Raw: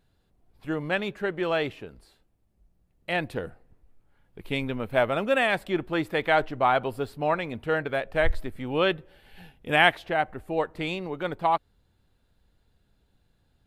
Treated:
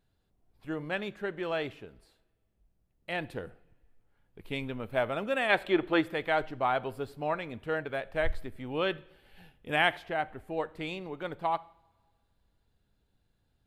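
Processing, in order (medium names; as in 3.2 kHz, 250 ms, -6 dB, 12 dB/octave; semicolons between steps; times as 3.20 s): time-frequency box 5.50–6.01 s, 280–4400 Hz +8 dB; two-slope reverb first 0.61 s, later 1.9 s, from -18 dB, DRR 17.5 dB; trim -6.5 dB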